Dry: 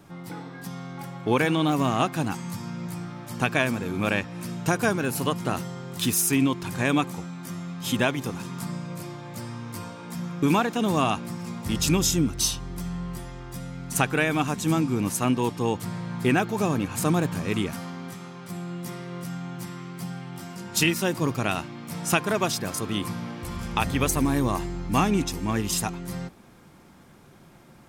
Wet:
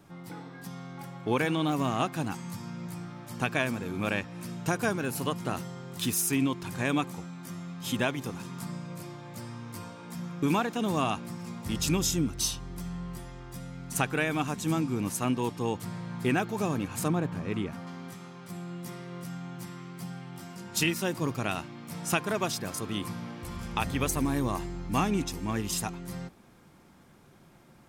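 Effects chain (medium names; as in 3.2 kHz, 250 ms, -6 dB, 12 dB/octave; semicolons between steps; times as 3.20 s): 17.08–17.87 s: low-pass 2 kHz 6 dB/octave; trim -5 dB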